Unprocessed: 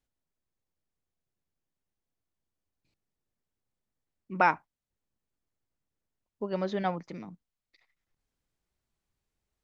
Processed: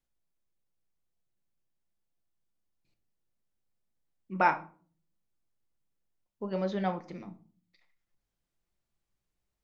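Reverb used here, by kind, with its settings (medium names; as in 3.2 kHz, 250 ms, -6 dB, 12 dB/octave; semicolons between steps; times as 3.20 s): simulated room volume 320 m³, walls furnished, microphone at 0.83 m; trim -3 dB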